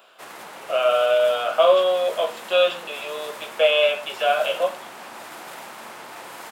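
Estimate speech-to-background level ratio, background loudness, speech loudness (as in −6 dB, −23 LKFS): 17.5 dB, −38.0 LKFS, −20.5 LKFS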